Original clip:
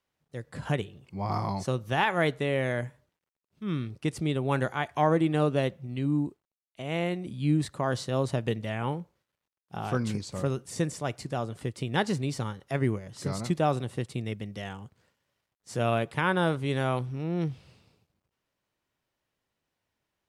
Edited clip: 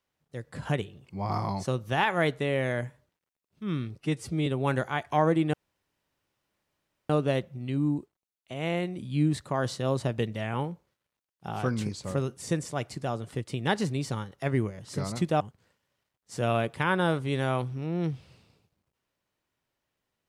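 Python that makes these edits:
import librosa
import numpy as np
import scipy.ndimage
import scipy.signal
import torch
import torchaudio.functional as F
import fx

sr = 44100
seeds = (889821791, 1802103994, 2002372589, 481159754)

y = fx.edit(x, sr, fx.stretch_span(start_s=4.0, length_s=0.31, factor=1.5),
    fx.insert_room_tone(at_s=5.38, length_s=1.56),
    fx.cut(start_s=13.69, length_s=1.09), tone=tone)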